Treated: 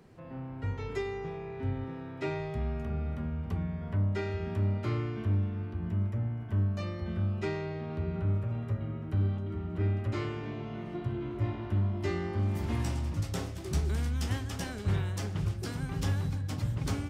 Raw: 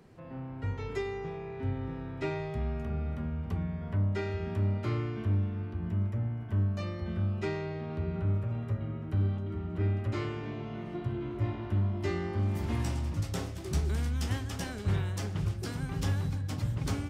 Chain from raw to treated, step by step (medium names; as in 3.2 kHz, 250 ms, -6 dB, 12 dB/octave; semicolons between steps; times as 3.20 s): 1.84–2.26 s: Bessel high-pass 150 Hz